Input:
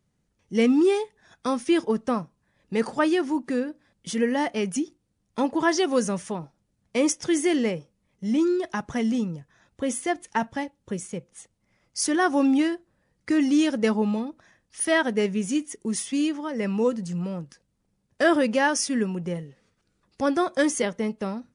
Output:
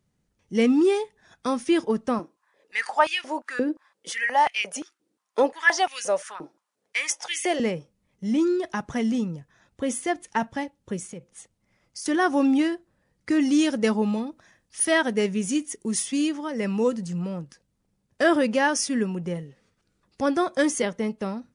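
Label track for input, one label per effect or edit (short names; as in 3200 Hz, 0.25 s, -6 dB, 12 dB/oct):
2.190000	7.600000	stepped high-pass 5.7 Hz 330–2500 Hz
11.100000	12.060000	compressor, threshold -34 dBFS
13.450000	17.050000	high shelf 4400 Hz +4.5 dB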